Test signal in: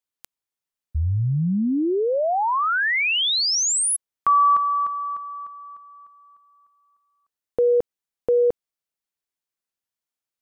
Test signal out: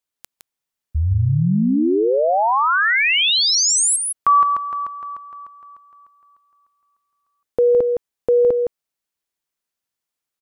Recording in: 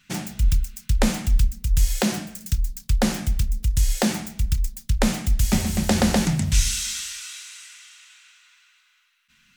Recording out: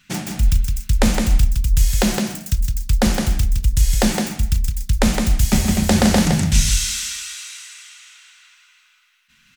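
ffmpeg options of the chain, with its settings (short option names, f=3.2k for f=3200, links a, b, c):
-af "aecho=1:1:163:0.562,volume=3.5dB"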